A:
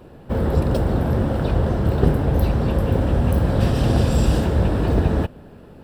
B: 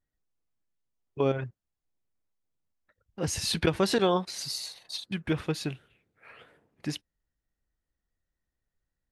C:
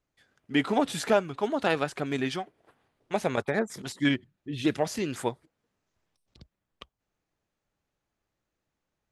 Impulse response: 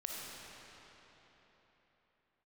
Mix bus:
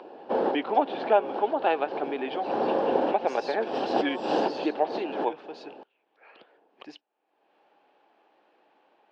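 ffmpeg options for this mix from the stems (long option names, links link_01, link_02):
-filter_complex "[0:a]volume=1dB[link_01];[1:a]alimiter=limit=-22dB:level=0:latency=1:release=15,volume=-6.5dB[link_02];[2:a]lowpass=frequency=3500:width=0.5412,lowpass=frequency=3500:width=1.3066,volume=0.5dB,asplit=2[link_03][link_04];[link_04]apad=whole_len=257127[link_05];[link_01][link_05]sidechaincompress=threshold=-42dB:ratio=4:attack=6.3:release=114[link_06];[link_06][link_02][link_03]amix=inputs=3:normalize=0,highpass=frequency=320:width=0.5412,highpass=frequency=320:width=1.3066,equalizer=frequency=810:width_type=q:width=4:gain=8,equalizer=frequency=1300:width_type=q:width=4:gain=-5,equalizer=frequency=2000:width_type=q:width=4:gain=-8,equalizer=frequency=3700:width_type=q:width=4:gain=-5,lowpass=frequency=4400:width=0.5412,lowpass=frequency=4400:width=1.3066,acompressor=mode=upward:threshold=-46dB:ratio=2.5"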